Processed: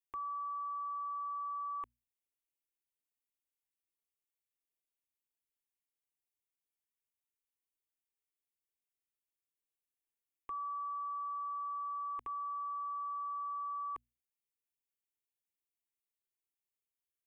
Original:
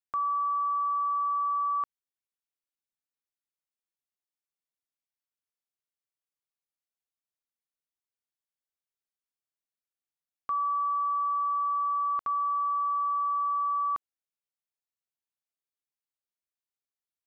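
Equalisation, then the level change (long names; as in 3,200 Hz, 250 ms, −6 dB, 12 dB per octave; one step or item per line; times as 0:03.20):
parametric band 1,100 Hz −9.5 dB 1.9 octaves
mains-hum notches 60/120/180/240 Hz
phaser with its sweep stopped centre 930 Hz, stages 8
+1.5 dB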